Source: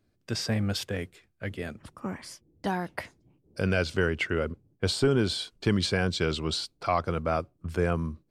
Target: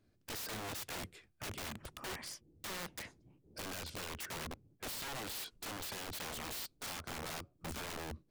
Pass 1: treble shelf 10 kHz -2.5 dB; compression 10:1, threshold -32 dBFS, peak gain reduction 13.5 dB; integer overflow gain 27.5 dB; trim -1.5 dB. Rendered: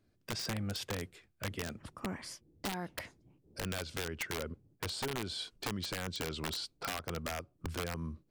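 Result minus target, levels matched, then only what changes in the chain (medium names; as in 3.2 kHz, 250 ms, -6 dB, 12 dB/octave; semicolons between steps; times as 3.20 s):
integer overflow: distortion -19 dB
change: integer overflow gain 36 dB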